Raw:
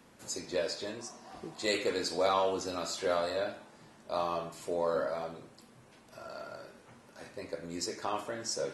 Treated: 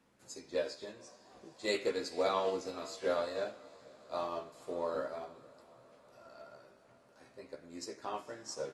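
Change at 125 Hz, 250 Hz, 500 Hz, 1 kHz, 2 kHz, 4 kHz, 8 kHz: -8.0, -4.5, -3.5, -5.0, -4.5, -6.5, -9.0 dB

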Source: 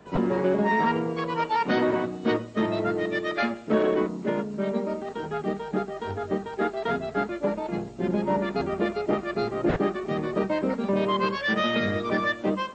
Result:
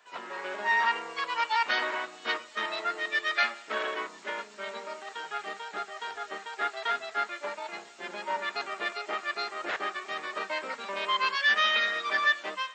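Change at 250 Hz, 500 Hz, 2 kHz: -23.0, -13.0, +3.5 dB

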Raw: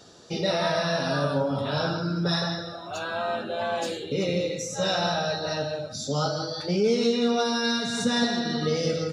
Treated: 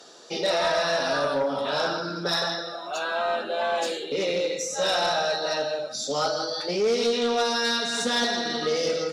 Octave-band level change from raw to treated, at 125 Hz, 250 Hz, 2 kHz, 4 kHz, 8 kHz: -12.0, -6.0, +3.0, +2.5, +3.0 dB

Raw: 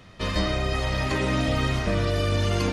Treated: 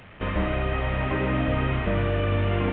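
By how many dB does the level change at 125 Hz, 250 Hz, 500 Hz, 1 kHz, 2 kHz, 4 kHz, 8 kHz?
0.0 dB, 0.0 dB, 0.0 dB, 0.0 dB, -0.5 dB, -8.0 dB, under -40 dB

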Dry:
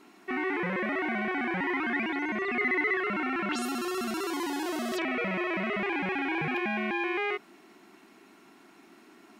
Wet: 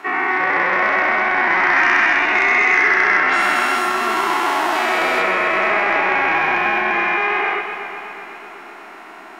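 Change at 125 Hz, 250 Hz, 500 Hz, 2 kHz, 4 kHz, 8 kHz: n/a, +2.0 dB, +10.0 dB, +16.5 dB, +13.0 dB, +10.0 dB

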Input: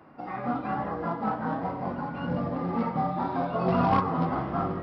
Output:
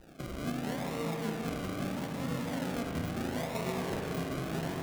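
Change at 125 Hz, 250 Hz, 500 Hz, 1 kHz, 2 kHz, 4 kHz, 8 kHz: -5.0 dB, -5.5 dB, -5.5 dB, -13.5 dB, -1.5 dB, +6.0 dB, n/a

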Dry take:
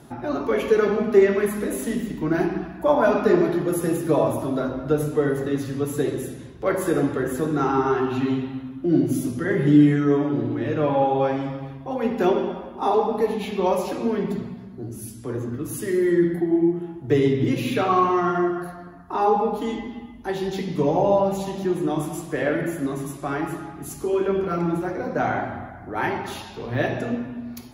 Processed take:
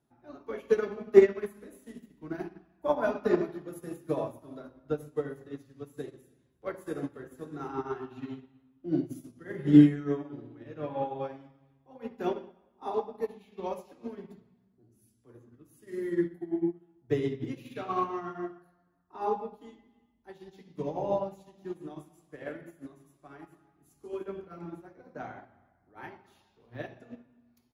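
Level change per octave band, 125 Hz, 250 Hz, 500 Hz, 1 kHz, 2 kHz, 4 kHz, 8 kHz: -11.5 dB, -9.0 dB, -10.0 dB, -13.5 dB, -14.0 dB, under -10 dB, under -20 dB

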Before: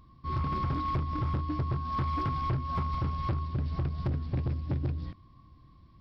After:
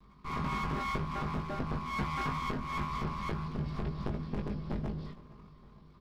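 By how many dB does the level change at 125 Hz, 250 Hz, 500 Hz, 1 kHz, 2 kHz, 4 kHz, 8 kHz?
-7.0 dB, -0.5 dB, +1.0 dB, -2.5 dB, +7.5 dB, +3.0 dB, n/a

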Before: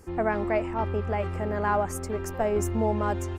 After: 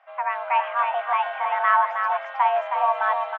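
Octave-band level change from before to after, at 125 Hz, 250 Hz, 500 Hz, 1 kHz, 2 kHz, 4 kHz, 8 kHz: under -40 dB, under -40 dB, -2.0 dB, +10.5 dB, +9.0 dB, +8.0 dB, under -30 dB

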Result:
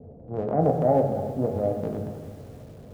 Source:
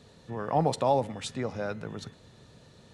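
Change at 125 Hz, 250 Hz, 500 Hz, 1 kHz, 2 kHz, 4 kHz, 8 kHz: +6.5 dB, +7.0 dB, +6.5 dB, +0.5 dB, n/a, under -15 dB, under -10 dB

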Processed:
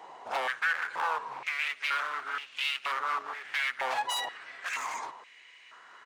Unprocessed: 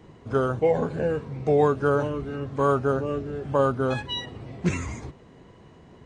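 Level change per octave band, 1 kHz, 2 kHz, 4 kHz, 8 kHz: -2.5 dB, +6.5 dB, +2.0 dB, n/a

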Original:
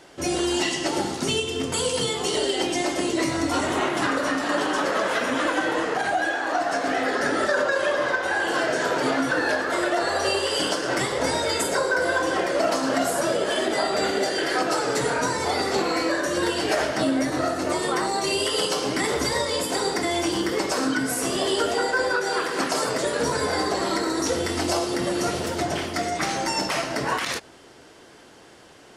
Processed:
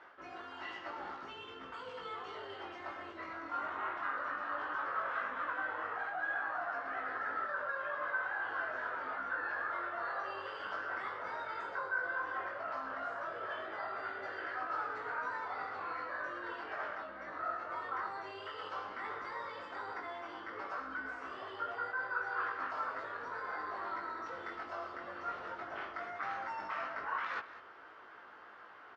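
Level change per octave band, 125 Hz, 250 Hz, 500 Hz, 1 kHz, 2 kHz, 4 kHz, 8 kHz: -28.0 dB, -28.0 dB, -22.0 dB, -12.0 dB, -12.0 dB, -27.0 dB, under -40 dB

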